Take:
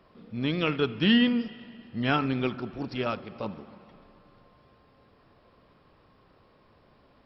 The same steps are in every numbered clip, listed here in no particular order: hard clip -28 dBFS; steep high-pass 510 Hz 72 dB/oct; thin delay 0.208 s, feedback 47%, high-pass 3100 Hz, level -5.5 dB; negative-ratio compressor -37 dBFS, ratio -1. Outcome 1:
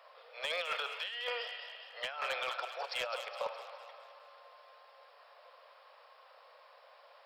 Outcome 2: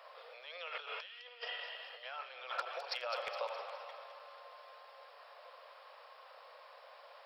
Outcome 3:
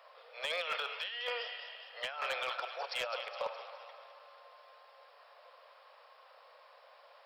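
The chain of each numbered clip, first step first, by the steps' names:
steep high-pass > negative-ratio compressor > hard clip > thin delay; negative-ratio compressor > steep high-pass > hard clip > thin delay; steep high-pass > negative-ratio compressor > thin delay > hard clip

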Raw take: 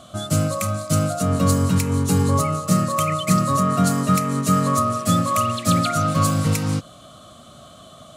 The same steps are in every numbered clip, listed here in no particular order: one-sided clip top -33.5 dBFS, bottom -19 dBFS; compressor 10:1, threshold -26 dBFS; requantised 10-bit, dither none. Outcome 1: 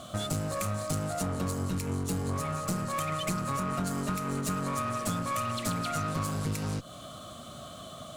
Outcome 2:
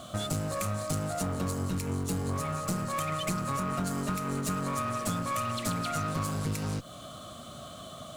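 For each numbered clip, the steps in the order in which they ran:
requantised > compressor > one-sided clip; compressor > one-sided clip > requantised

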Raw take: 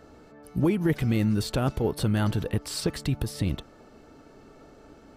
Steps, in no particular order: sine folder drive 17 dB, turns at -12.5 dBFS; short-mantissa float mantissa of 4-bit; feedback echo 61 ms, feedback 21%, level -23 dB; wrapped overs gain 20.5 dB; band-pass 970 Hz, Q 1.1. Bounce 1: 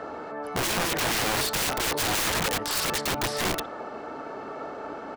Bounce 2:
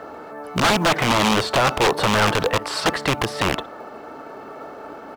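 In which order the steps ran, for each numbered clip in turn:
feedback echo > short-mantissa float > band-pass > sine folder > wrapped overs; feedback echo > wrapped overs > band-pass > short-mantissa float > sine folder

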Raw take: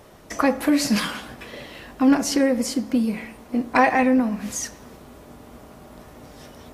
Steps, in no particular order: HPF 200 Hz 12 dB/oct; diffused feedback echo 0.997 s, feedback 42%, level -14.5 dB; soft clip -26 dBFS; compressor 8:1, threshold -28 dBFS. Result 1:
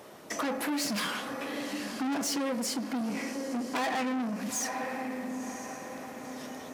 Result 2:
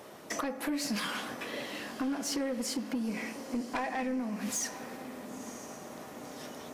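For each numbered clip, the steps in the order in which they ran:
diffused feedback echo > soft clip > compressor > HPF; HPF > compressor > diffused feedback echo > soft clip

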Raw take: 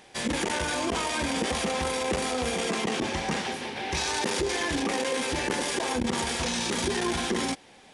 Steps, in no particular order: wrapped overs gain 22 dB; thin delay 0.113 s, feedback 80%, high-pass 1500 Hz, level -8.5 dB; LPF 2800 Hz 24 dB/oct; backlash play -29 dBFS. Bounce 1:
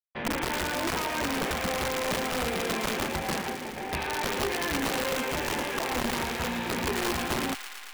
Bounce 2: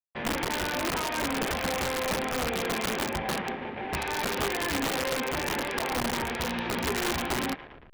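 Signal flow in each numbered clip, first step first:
backlash > LPF > wrapped overs > thin delay; thin delay > backlash > LPF > wrapped overs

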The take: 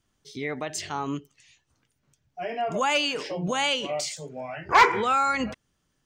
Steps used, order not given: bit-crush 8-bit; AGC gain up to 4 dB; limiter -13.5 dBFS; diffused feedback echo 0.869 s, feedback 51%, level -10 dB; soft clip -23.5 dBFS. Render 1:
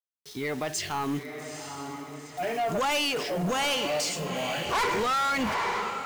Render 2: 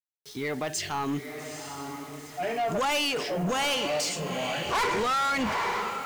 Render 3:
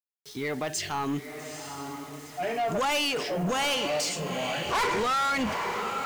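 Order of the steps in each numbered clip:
bit-crush > diffused feedback echo > limiter > AGC > soft clip; diffused feedback echo > limiter > AGC > bit-crush > soft clip; limiter > AGC > diffused feedback echo > bit-crush > soft clip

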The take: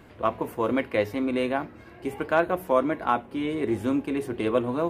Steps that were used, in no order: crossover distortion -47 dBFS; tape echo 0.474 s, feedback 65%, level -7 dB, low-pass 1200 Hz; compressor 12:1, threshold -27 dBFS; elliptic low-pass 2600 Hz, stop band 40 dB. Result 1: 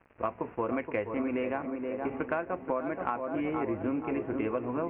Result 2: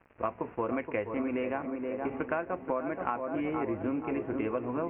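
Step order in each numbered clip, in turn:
crossover distortion > elliptic low-pass > tape echo > compressor; crossover distortion > tape echo > compressor > elliptic low-pass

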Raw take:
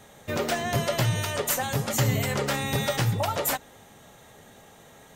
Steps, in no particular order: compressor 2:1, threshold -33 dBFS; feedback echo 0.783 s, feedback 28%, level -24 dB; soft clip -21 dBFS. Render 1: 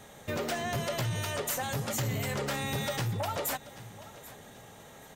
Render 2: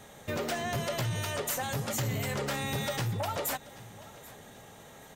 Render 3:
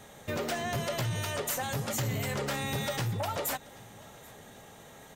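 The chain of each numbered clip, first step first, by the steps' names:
feedback echo > soft clip > compressor; soft clip > feedback echo > compressor; soft clip > compressor > feedback echo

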